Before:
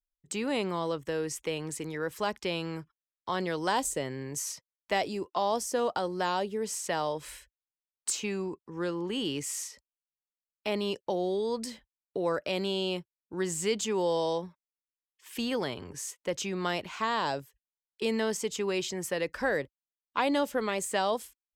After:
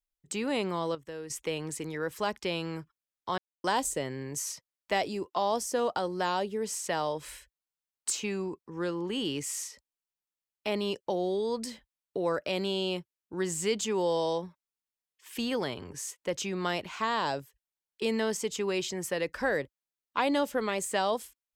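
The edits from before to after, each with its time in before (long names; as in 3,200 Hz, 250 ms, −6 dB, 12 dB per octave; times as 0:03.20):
0:00.95–0:01.30: clip gain −8.5 dB
0:03.38–0:03.64: silence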